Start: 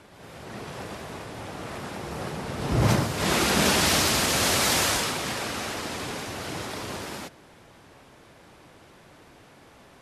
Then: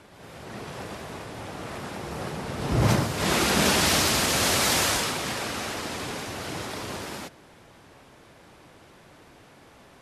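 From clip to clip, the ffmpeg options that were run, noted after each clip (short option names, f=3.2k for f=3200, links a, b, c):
-af anull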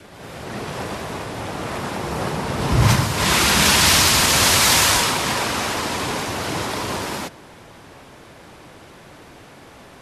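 -filter_complex "[0:a]adynamicequalizer=threshold=0.00562:dfrequency=980:dqfactor=4.1:tfrequency=980:tqfactor=4.1:attack=5:release=100:ratio=0.375:range=3:mode=boostabove:tftype=bell,acrossover=split=150|1300[a][b][c];[b]alimiter=level_in=1dB:limit=-24dB:level=0:latency=1:release=310,volume=-1dB[d];[a][d][c]amix=inputs=3:normalize=0,volume=8.5dB"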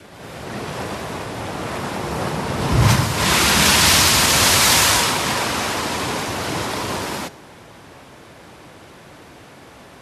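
-af "highpass=47,bandreject=f=407.8:t=h:w=4,bandreject=f=815.6:t=h:w=4,bandreject=f=1.2234k:t=h:w=4,bandreject=f=1.6312k:t=h:w=4,bandreject=f=2.039k:t=h:w=4,bandreject=f=2.4468k:t=h:w=4,bandreject=f=2.8546k:t=h:w=4,bandreject=f=3.2624k:t=h:w=4,bandreject=f=3.6702k:t=h:w=4,bandreject=f=4.078k:t=h:w=4,bandreject=f=4.4858k:t=h:w=4,bandreject=f=4.8936k:t=h:w=4,bandreject=f=5.3014k:t=h:w=4,bandreject=f=5.7092k:t=h:w=4,bandreject=f=6.117k:t=h:w=4,bandreject=f=6.5248k:t=h:w=4,bandreject=f=6.9326k:t=h:w=4,bandreject=f=7.3404k:t=h:w=4,bandreject=f=7.7482k:t=h:w=4,bandreject=f=8.156k:t=h:w=4,bandreject=f=8.5638k:t=h:w=4,bandreject=f=8.9716k:t=h:w=4,bandreject=f=9.3794k:t=h:w=4,bandreject=f=9.7872k:t=h:w=4,bandreject=f=10.195k:t=h:w=4,bandreject=f=10.6028k:t=h:w=4,bandreject=f=11.0106k:t=h:w=4,bandreject=f=11.4184k:t=h:w=4,bandreject=f=11.8262k:t=h:w=4,bandreject=f=12.234k:t=h:w=4,bandreject=f=12.6418k:t=h:w=4,bandreject=f=13.0496k:t=h:w=4,bandreject=f=13.4574k:t=h:w=4,bandreject=f=13.8652k:t=h:w=4,bandreject=f=14.273k:t=h:w=4,volume=1dB"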